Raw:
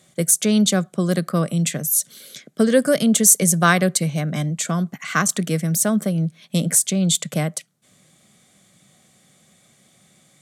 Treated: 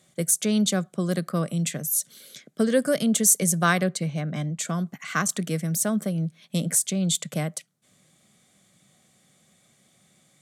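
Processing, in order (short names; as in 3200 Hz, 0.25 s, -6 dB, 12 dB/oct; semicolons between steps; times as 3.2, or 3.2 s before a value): 3.83–4.59 bell 14000 Hz -13 dB 1.3 oct; gain -5.5 dB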